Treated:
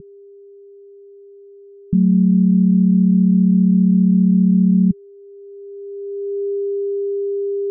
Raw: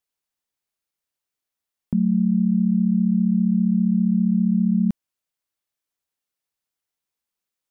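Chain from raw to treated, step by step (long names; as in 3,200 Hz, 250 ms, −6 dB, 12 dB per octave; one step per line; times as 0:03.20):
steady tone 400 Hz −26 dBFS
spectral tilt −1.5 dB per octave
low-pass filter sweep 170 Hz → 430 Hz, 0:05.14–0:06.58
level −2 dB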